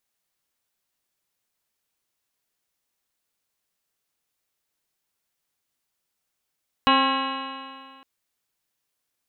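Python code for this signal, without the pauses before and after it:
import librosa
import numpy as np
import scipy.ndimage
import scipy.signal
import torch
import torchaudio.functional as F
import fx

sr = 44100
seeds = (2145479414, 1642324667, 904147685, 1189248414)

y = fx.additive_stiff(sr, length_s=1.16, hz=265.0, level_db=-21.5, upper_db=(-6.0, -1.5, 5.0, -7.0, -6, -11.0, -12.5, -5.0, -1.5, -12.5, -18, -9), decay_s=2.03, stiffness=0.0019)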